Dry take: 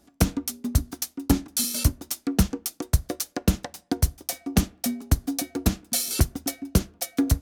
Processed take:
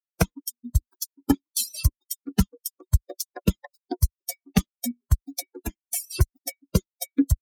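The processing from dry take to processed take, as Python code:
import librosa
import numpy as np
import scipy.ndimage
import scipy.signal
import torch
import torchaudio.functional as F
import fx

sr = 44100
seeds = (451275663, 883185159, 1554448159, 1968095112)

p1 = fx.bin_expand(x, sr, power=3.0)
p2 = fx.dereverb_blind(p1, sr, rt60_s=0.76)
p3 = fx.level_steps(p2, sr, step_db=12)
p4 = p2 + (p3 * 10.0 ** (-1.0 / 20.0))
p5 = fx.fixed_phaser(p4, sr, hz=810.0, stages=8, at=(5.65, 6.09), fade=0.02)
y = p5 * 10.0 ** (1.0 / 20.0)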